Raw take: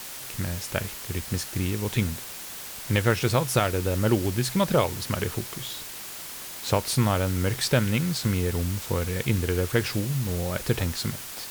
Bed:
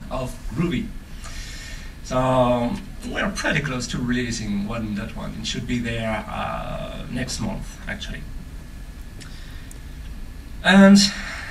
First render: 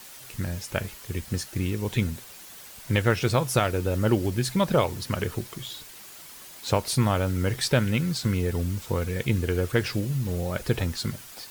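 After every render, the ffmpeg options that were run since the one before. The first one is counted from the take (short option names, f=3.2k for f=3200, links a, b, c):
-af "afftdn=nr=8:nf=-39"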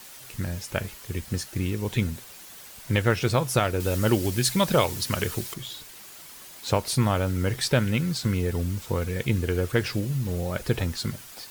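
-filter_complex "[0:a]asettb=1/sr,asplit=3[a][b][c];[a]atrim=end=3.804[d];[b]atrim=start=3.8:end=5.54,asetpts=PTS-STARTPTS,afade=t=in:d=0.004:c=qsin,afade=t=out:st=1.736:d=0.004:c=qsin,highshelf=f=2.3k:g=8.5[e];[c]atrim=start=5.536[f];[d][e]acrossfade=d=0.004:c1=hsin:c2=qsin[g];[g][f]acrossfade=d=0.004:c1=qsin:c2=hsin"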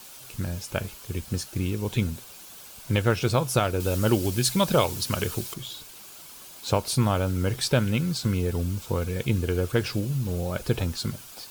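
-af "equalizer=f=1.9k:t=o:w=0.27:g=-9"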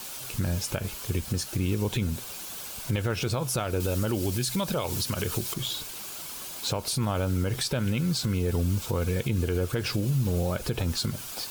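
-filter_complex "[0:a]asplit=2[a][b];[b]acompressor=threshold=-32dB:ratio=6,volume=1dB[c];[a][c]amix=inputs=2:normalize=0,alimiter=limit=-18.5dB:level=0:latency=1:release=90"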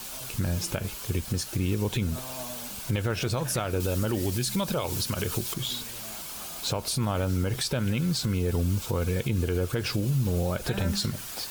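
-filter_complex "[1:a]volume=-22.5dB[a];[0:a][a]amix=inputs=2:normalize=0"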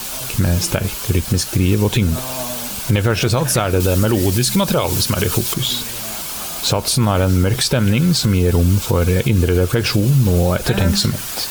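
-af "volume=12dB"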